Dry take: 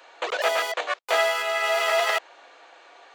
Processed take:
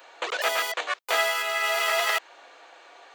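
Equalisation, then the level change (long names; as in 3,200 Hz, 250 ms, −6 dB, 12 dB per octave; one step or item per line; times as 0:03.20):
dynamic equaliser 590 Hz, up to −6 dB, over −36 dBFS, Q 1.3
high-shelf EQ 11,000 Hz +9 dB
0.0 dB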